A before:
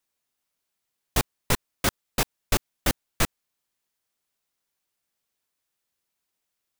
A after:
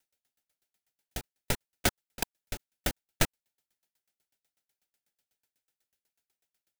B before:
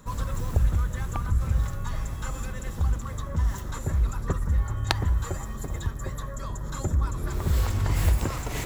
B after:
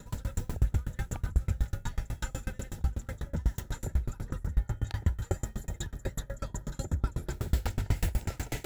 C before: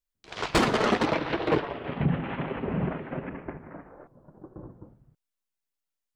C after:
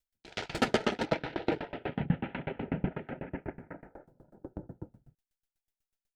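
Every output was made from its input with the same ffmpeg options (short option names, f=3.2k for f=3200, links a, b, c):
-filter_complex "[0:a]asplit=2[a][b];[b]acompressor=threshold=-33dB:ratio=6,volume=2dB[c];[a][c]amix=inputs=2:normalize=0,asuperstop=centerf=1100:order=4:qfactor=3.7,aeval=exprs='val(0)*pow(10,-31*if(lt(mod(8.1*n/s,1),2*abs(8.1)/1000),1-mod(8.1*n/s,1)/(2*abs(8.1)/1000),(mod(8.1*n/s,1)-2*abs(8.1)/1000)/(1-2*abs(8.1)/1000))/20)':c=same"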